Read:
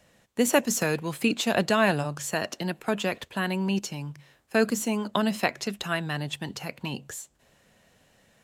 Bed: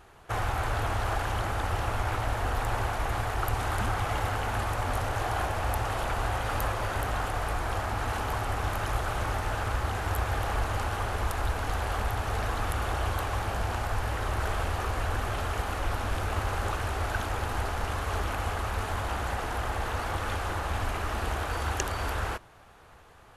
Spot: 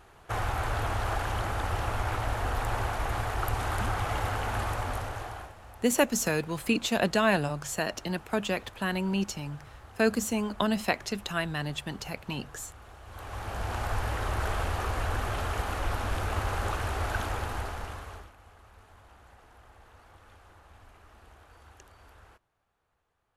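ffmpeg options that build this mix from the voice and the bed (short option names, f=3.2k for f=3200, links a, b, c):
-filter_complex "[0:a]adelay=5450,volume=-2dB[a];[1:a]volume=18.5dB,afade=t=out:st=4.69:d=0.86:silence=0.112202,afade=t=in:st=13.06:d=0.82:silence=0.105925,afade=t=out:st=17.25:d=1.07:silence=0.0668344[b];[a][b]amix=inputs=2:normalize=0"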